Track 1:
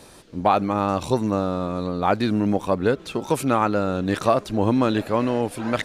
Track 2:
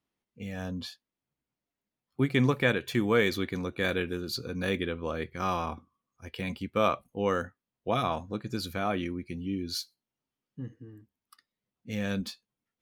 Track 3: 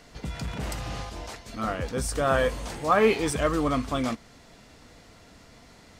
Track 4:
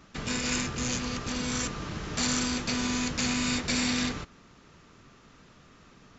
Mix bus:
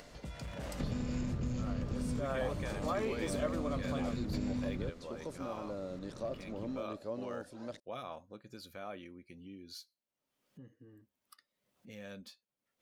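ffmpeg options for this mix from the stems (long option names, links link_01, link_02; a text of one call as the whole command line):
ffmpeg -i stem1.wav -i stem2.wav -i stem3.wav -i stem4.wav -filter_complex "[0:a]highshelf=frequency=3500:width_type=q:width=1.5:gain=11.5,acrossover=split=500[link_01][link_02];[link_02]acompressor=threshold=-40dB:ratio=2[link_03];[link_01][link_03]amix=inputs=2:normalize=0,aemphasis=mode=reproduction:type=50fm,adelay=1950,volume=-16.5dB[link_04];[1:a]volume=-15dB,asplit=2[link_05][link_06];[2:a]volume=-11dB[link_07];[3:a]tiltshelf=frequency=910:gain=8,bandreject=frequency=6000:width=12,acrossover=split=210[link_08][link_09];[link_09]acompressor=threshold=-45dB:ratio=2[link_10];[link_08][link_10]amix=inputs=2:normalize=0,adelay=650,volume=2.5dB[link_11];[link_06]apad=whole_len=301447[link_12];[link_11][link_12]sidechaincompress=threshold=-44dB:ratio=8:attack=5.9:release=1460[link_13];[link_04][link_05]amix=inputs=2:normalize=0,lowshelf=frequency=200:gain=-8,alimiter=level_in=9.5dB:limit=-24dB:level=0:latency=1:release=11,volume=-9.5dB,volume=0dB[link_14];[link_07][link_13]amix=inputs=2:normalize=0,acompressor=threshold=-33dB:ratio=6,volume=0dB[link_15];[link_14][link_15]amix=inputs=2:normalize=0,equalizer=frequency=570:width_type=o:width=0.21:gain=9.5,acompressor=mode=upward:threshold=-46dB:ratio=2.5" out.wav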